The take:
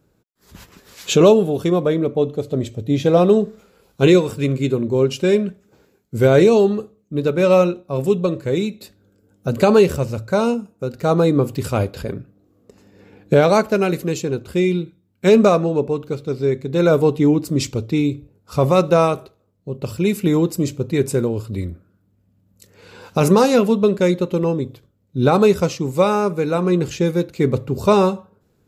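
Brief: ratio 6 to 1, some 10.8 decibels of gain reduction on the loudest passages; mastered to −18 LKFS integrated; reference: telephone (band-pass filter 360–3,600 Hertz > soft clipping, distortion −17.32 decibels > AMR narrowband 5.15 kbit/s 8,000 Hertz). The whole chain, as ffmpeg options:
ffmpeg -i in.wav -af "acompressor=threshold=-20dB:ratio=6,highpass=360,lowpass=3600,asoftclip=threshold=-19.5dB,volume=13dB" -ar 8000 -c:a libopencore_amrnb -b:a 5150 out.amr

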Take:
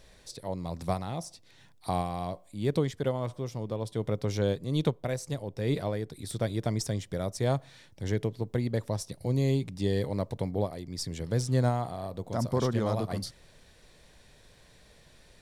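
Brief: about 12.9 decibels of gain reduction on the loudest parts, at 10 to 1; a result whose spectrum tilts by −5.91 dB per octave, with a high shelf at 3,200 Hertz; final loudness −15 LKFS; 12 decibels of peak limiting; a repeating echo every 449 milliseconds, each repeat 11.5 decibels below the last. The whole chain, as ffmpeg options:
ffmpeg -i in.wav -af "highshelf=frequency=3200:gain=-4,acompressor=threshold=-35dB:ratio=10,alimiter=level_in=10dB:limit=-24dB:level=0:latency=1,volume=-10dB,aecho=1:1:449|898|1347:0.266|0.0718|0.0194,volume=29.5dB" out.wav

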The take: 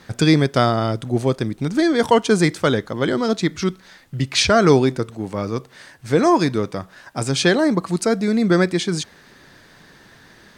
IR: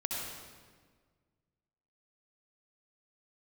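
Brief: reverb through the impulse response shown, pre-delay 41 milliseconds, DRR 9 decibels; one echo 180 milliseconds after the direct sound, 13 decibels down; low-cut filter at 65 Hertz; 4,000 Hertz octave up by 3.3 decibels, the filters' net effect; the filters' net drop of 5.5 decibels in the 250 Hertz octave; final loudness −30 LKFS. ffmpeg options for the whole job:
-filter_complex "[0:a]highpass=65,equalizer=frequency=250:width_type=o:gain=-8,equalizer=frequency=4000:width_type=o:gain=4,aecho=1:1:180:0.224,asplit=2[link_01][link_02];[1:a]atrim=start_sample=2205,adelay=41[link_03];[link_02][link_03]afir=irnorm=-1:irlink=0,volume=-13dB[link_04];[link_01][link_04]amix=inputs=2:normalize=0,volume=-10dB"

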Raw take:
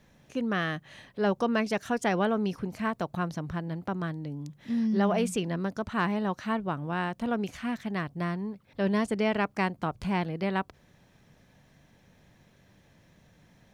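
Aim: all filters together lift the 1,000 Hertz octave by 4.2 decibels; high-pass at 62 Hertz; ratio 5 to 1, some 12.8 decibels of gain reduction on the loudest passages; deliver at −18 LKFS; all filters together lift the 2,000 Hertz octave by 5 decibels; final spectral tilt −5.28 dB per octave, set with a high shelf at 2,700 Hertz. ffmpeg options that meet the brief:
ffmpeg -i in.wav -af "highpass=62,equalizer=frequency=1000:width_type=o:gain=4.5,equalizer=frequency=2000:width_type=o:gain=6.5,highshelf=frequency=2700:gain=-5,acompressor=threshold=-35dB:ratio=5,volume=20.5dB" out.wav

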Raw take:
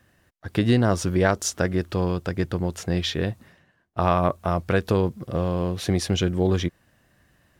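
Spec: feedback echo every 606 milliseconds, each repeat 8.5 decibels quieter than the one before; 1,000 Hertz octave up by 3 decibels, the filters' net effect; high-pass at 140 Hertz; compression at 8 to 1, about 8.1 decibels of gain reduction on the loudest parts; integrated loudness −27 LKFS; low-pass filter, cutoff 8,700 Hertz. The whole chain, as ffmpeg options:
ffmpeg -i in.wav -af "highpass=140,lowpass=8700,equalizer=frequency=1000:width_type=o:gain=4,acompressor=threshold=-22dB:ratio=8,aecho=1:1:606|1212|1818|2424:0.376|0.143|0.0543|0.0206,volume=2.5dB" out.wav

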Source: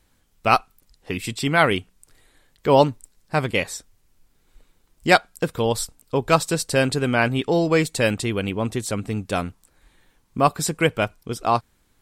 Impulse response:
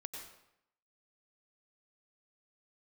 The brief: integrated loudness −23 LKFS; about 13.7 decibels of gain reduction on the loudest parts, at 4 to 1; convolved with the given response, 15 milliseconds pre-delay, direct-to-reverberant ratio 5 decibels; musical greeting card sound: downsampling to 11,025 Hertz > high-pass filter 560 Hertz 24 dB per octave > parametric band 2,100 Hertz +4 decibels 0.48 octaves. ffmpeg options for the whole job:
-filter_complex "[0:a]acompressor=threshold=-27dB:ratio=4,asplit=2[link_01][link_02];[1:a]atrim=start_sample=2205,adelay=15[link_03];[link_02][link_03]afir=irnorm=-1:irlink=0,volume=-2.5dB[link_04];[link_01][link_04]amix=inputs=2:normalize=0,aresample=11025,aresample=44100,highpass=frequency=560:width=0.5412,highpass=frequency=560:width=1.3066,equalizer=frequency=2100:width_type=o:width=0.48:gain=4,volume=10dB"

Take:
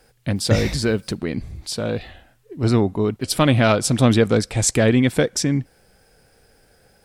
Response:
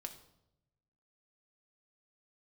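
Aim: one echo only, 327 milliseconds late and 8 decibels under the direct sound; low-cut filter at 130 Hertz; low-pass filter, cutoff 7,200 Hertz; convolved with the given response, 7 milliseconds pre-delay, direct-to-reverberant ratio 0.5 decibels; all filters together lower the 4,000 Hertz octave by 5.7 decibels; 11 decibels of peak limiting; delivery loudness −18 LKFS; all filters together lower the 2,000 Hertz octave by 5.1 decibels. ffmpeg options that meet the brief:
-filter_complex "[0:a]highpass=130,lowpass=7200,equalizer=frequency=2000:width_type=o:gain=-5.5,equalizer=frequency=4000:width_type=o:gain=-5.5,alimiter=limit=-14dB:level=0:latency=1,aecho=1:1:327:0.398,asplit=2[link_01][link_02];[1:a]atrim=start_sample=2205,adelay=7[link_03];[link_02][link_03]afir=irnorm=-1:irlink=0,volume=3dB[link_04];[link_01][link_04]amix=inputs=2:normalize=0,volume=4.5dB"

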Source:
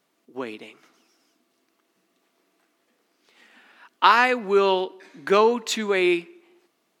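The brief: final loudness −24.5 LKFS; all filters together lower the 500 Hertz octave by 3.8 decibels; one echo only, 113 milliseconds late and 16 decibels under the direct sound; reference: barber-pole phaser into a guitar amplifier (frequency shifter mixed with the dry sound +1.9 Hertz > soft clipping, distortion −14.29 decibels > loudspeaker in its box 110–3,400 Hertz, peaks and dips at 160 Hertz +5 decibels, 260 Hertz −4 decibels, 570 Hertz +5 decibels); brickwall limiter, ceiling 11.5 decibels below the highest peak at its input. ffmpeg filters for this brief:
ffmpeg -i in.wav -filter_complex "[0:a]equalizer=frequency=500:width_type=o:gain=-6.5,alimiter=limit=-14.5dB:level=0:latency=1,aecho=1:1:113:0.158,asplit=2[link_01][link_02];[link_02]afreqshift=1.9[link_03];[link_01][link_03]amix=inputs=2:normalize=1,asoftclip=threshold=-24dB,highpass=110,equalizer=frequency=160:width_type=q:width=4:gain=5,equalizer=frequency=260:width_type=q:width=4:gain=-4,equalizer=frequency=570:width_type=q:width=4:gain=5,lowpass=frequency=3400:width=0.5412,lowpass=frequency=3400:width=1.3066,volume=9dB" out.wav

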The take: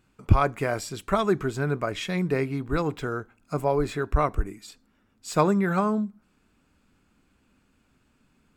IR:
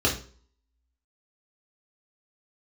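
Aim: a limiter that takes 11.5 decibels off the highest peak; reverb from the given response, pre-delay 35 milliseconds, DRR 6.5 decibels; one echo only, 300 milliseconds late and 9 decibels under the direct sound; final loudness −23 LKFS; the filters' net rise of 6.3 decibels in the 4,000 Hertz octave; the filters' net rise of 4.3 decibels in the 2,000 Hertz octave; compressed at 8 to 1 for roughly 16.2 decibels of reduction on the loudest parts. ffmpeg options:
-filter_complex "[0:a]equalizer=frequency=2000:width_type=o:gain=4.5,equalizer=frequency=4000:width_type=o:gain=6.5,acompressor=threshold=-30dB:ratio=8,alimiter=level_in=5.5dB:limit=-24dB:level=0:latency=1,volume=-5.5dB,aecho=1:1:300:0.355,asplit=2[link_01][link_02];[1:a]atrim=start_sample=2205,adelay=35[link_03];[link_02][link_03]afir=irnorm=-1:irlink=0,volume=-20dB[link_04];[link_01][link_04]amix=inputs=2:normalize=0,volume=14.5dB"

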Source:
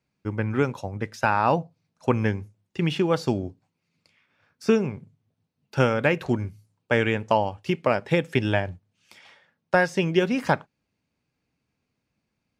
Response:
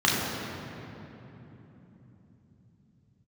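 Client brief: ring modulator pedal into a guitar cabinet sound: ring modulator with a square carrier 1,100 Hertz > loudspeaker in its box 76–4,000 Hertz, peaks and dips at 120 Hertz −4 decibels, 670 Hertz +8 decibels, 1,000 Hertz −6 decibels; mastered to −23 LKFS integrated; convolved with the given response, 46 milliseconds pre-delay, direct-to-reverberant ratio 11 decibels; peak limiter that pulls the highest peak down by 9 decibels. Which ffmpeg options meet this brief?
-filter_complex "[0:a]alimiter=limit=-16dB:level=0:latency=1,asplit=2[link_01][link_02];[1:a]atrim=start_sample=2205,adelay=46[link_03];[link_02][link_03]afir=irnorm=-1:irlink=0,volume=-28dB[link_04];[link_01][link_04]amix=inputs=2:normalize=0,aeval=exprs='val(0)*sgn(sin(2*PI*1100*n/s))':channel_layout=same,highpass=76,equalizer=frequency=120:width_type=q:width=4:gain=-4,equalizer=frequency=670:width_type=q:width=4:gain=8,equalizer=frequency=1000:width_type=q:width=4:gain=-6,lowpass=frequency=4000:width=0.5412,lowpass=frequency=4000:width=1.3066,volume=5.5dB"

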